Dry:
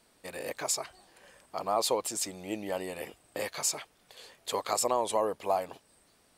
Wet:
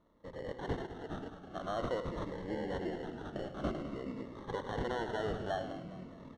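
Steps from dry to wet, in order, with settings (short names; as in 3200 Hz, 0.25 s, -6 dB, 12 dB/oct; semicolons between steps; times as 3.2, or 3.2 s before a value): in parallel at +1 dB: limiter -22.5 dBFS, peak gain reduction 7.5 dB; on the sum: echoes that change speed 0.124 s, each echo -6 st, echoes 3, each echo -6 dB; echo 0.103 s -11 dB; sample-and-hold 18×; tape spacing loss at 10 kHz 30 dB; feedback echo 0.207 s, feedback 54%, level -12.5 dB; cascading phaser falling 0.49 Hz; gain -8 dB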